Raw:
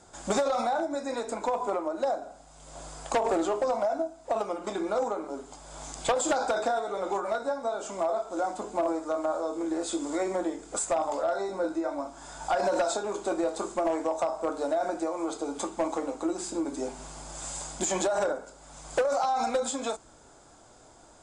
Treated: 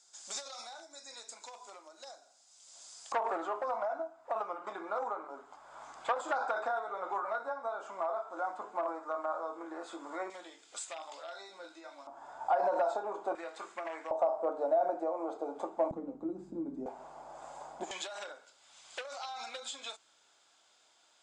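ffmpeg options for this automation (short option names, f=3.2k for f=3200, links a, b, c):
-af "asetnsamples=n=441:p=0,asendcmd='3.12 bandpass f 1200;10.3 bandpass f 3300;12.07 bandpass f 840;13.35 bandpass f 2000;14.11 bandpass f 660;15.91 bandpass f 180;16.86 bandpass f 760;17.91 bandpass f 3200',bandpass=f=5.4k:t=q:w=1.7:csg=0"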